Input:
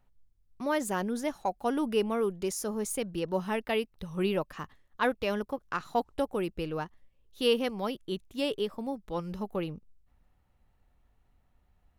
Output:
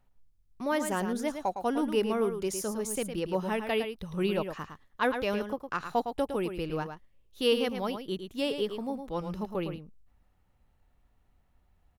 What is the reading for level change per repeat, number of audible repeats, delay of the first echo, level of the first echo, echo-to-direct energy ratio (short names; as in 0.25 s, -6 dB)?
no steady repeat, 1, 0.109 s, -8.0 dB, -8.0 dB